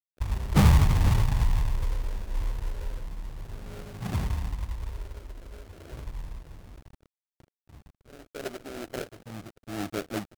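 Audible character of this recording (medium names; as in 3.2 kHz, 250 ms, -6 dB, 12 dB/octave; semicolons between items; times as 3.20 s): a quantiser's noise floor 8-bit, dither none; phasing stages 4, 0.32 Hz, lowest notch 150–1100 Hz; aliases and images of a low sample rate 1 kHz, jitter 20%; AAC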